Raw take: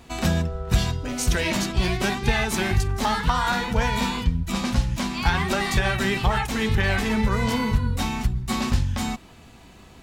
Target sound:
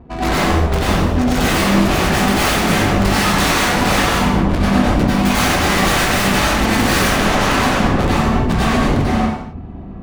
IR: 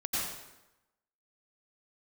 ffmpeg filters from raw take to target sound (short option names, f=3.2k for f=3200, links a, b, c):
-filter_complex "[0:a]adynamicsmooth=sensitivity=3:basefreq=550,aeval=exprs='0.355*(cos(1*acos(clip(val(0)/0.355,-1,1)))-cos(1*PI/2))+0.112*(cos(7*acos(clip(val(0)/0.355,-1,1)))-cos(7*PI/2))':c=same,aeval=exprs='0.501*sin(PI/2*5.62*val(0)/0.501)':c=same[a];[1:a]atrim=start_sample=2205,afade=t=out:st=0.44:d=0.01,atrim=end_sample=19845[b];[a][b]afir=irnorm=-1:irlink=0,volume=-10dB"